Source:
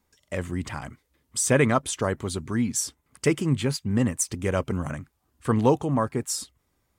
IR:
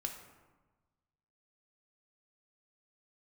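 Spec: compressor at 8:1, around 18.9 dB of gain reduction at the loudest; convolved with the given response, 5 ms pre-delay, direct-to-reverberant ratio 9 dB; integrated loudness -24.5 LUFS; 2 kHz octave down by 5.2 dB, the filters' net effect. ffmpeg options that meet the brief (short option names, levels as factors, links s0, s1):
-filter_complex "[0:a]equalizer=f=2000:t=o:g=-6.5,acompressor=threshold=0.0158:ratio=8,asplit=2[s0][s1];[1:a]atrim=start_sample=2205,adelay=5[s2];[s1][s2]afir=irnorm=-1:irlink=0,volume=0.376[s3];[s0][s3]amix=inputs=2:normalize=0,volume=5.96"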